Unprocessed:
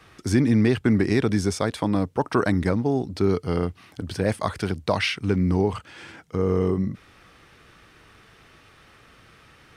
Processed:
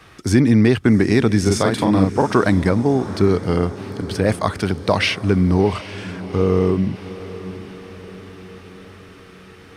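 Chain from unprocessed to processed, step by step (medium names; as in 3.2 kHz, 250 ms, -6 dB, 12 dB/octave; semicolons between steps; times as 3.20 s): 1.41–2.36 s: doubling 42 ms -2.5 dB; echo that smears into a reverb 769 ms, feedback 56%, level -15 dB; trim +5.5 dB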